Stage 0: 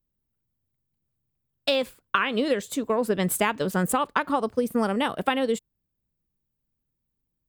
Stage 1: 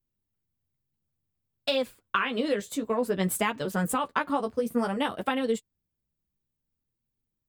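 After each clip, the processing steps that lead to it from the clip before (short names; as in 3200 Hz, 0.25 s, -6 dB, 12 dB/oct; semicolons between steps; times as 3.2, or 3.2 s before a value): flange 0.56 Hz, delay 7.7 ms, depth 7.4 ms, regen -17%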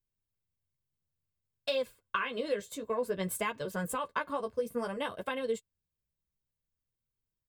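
comb 1.9 ms, depth 46%; gain -7 dB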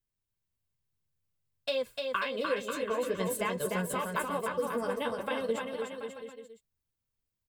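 bouncing-ball echo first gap 0.3 s, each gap 0.8×, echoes 5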